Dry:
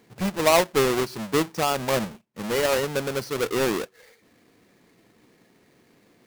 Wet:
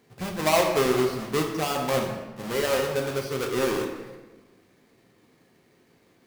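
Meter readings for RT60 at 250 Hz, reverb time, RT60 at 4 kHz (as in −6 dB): 1.4 s, 1.3 s, 0.85 s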